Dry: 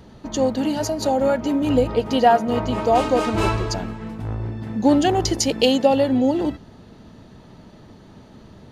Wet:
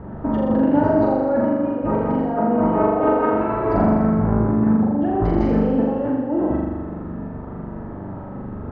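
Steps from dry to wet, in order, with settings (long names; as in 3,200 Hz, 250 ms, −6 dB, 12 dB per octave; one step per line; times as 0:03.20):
low-pass filter 1,500 Hz 24 dB per octave
compressor whose output falls as the input rises −26 dBFS, ratio −1
0:01.18–0:03.74: low-shelf EQ 140 Hz −11.5 dB
flutter between parallel walls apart 7.1 metres, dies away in 1.4 s
level +3.5 dB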